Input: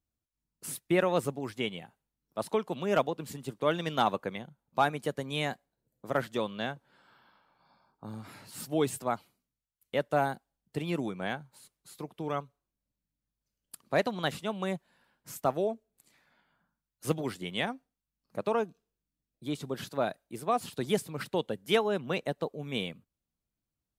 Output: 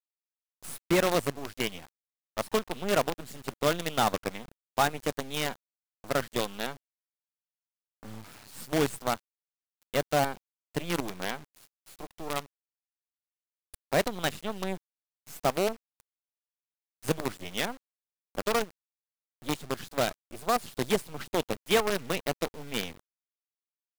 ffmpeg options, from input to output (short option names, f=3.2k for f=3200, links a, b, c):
-filter_complex "[0:a]asplit=2[a][b];[b]asoftclip=type=tanh:threshold=-28dB,volume=-11.5dB[c];[a][c]amix=inputs=2:normalize=0,acrusher=bits=5:dc=4:mix=0:aa=0.000001"